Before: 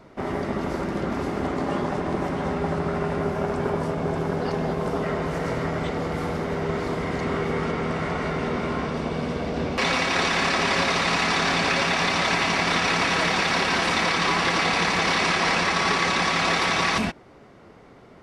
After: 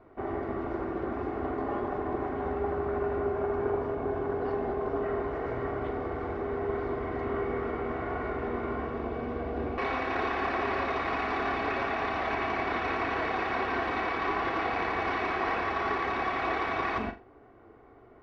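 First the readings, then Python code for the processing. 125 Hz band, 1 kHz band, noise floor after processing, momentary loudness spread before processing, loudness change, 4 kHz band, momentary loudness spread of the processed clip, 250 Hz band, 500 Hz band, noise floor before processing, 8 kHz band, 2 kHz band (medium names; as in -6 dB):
-11.0 dB, -5.5 dB, -54 dBFS, 7 LU, -7.5 dB, -19.0 dB, 4 LU, -7.5 dB, -4.0 dB, -49 dBFS, under -25 dB, -10.0 dB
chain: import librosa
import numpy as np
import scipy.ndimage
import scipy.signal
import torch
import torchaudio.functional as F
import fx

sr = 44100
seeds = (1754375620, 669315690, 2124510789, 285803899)

y = scipy.signal.sosfilt(scipy.signal.butter(2, 1600.0, 'lowpass', fs=sr, output='sos'), x)
y = fx.peak_eq(y, sr, hz=170.0, db=-13.5, octaves=0.3)
y = y + 0.4 * np.pad(y, (int(2.7 * sr / 1000.0), 0))[:len(y)]
y = fx.room_flutter(y, sr, wall_m=7.2, rt60_s=0.27)
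y = F.gain(torch.from_numpy(y), -6.0).numpy()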